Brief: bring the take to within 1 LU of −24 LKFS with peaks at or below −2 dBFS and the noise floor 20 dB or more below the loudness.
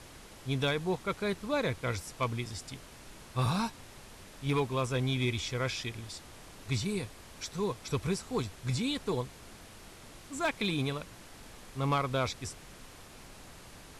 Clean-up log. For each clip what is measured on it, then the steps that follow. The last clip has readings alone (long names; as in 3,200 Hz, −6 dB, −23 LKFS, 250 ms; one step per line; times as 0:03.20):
share of clipped samples 0.3%; peaks flattened at −22.0 dBFS; background noise floor −52 dBFS; target noise floor −54 dBFS; integrated loudness −33.5 LKFS; sample peak −22.0 dBFS; target loudness −24.0 LKFS
→ clipped peaks rebuilt −22 dBFS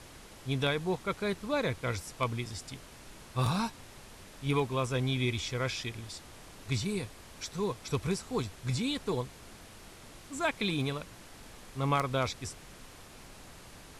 share of clipped samples 0.0%; background noise floor −52 dBFS; target noise floor −54 dBFS
→ noise reduction from a noise print 6 dB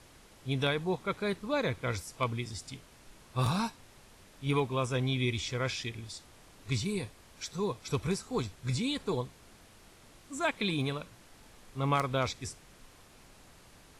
background noise floor −57 dBFS; integrated loudness −33.5 LKFS; sample peak −13.0 dBFS; target loudness −24.0 LKFS
→ level +9.5 dB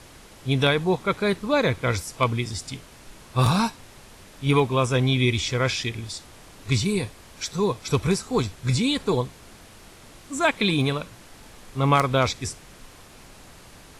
integrated loudness −24.0 LKFS; sample peak −3.5 dBFS; background noise floor −48 dBFS